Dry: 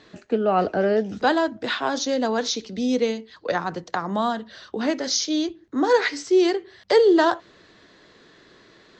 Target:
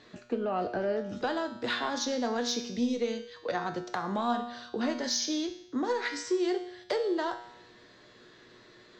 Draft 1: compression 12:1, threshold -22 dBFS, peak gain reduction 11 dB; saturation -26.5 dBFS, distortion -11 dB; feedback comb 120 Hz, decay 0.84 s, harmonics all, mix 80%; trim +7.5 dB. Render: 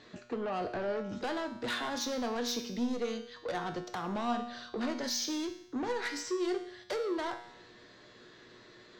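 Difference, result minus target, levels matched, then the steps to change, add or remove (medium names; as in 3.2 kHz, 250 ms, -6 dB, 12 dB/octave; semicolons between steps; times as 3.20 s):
saturation: distortion +16 dB
change: saturation -14.5 dBFS, distortion -26 dB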